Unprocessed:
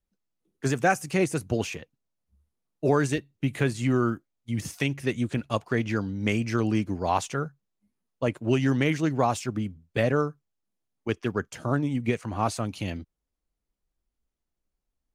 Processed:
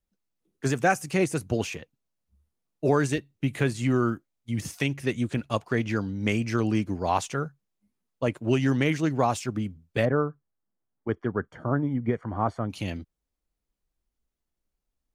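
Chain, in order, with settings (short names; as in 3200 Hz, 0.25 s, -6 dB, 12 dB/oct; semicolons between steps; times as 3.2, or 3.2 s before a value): 10.05–12.7 polynomial smoothing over 41 samples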